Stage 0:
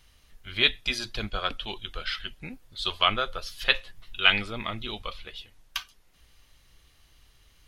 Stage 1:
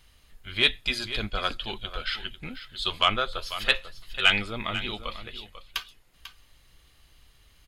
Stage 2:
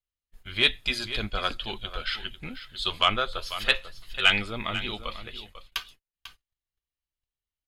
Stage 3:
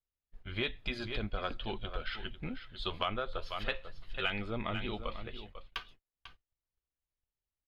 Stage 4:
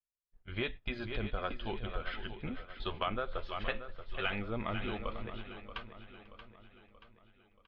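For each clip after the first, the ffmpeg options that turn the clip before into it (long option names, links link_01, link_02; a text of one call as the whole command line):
ffmpeg -i in.wav -af "bandreject=frequency=5800:width=8,acontrast=38,aecho=1:1:494:0.237,volume=-4.5dB" out.wav
ffmpeg -i in.wav -af "agate=range=-37dB:threshold=-48dB:ratio=16:detection=peak" out.wav
ffmpeg -i in.wav -af "firequalizer=gain_entry='entry(560,0);entry(1100,-4);entry(8400,-23)':delay=0.05:min_phase=1,acompressor=threshold=-31dB:ratio=4" out.wav
ffmpeg -i in.wav -af "agate=range=-13dB:threshold=-42dB:ratio=16:detection=peak,lowpass=2800,aecho=1:1:630|1260|1890|2520|3150:0.266|0.13|0.0639|0.0313|0.0153" out.wav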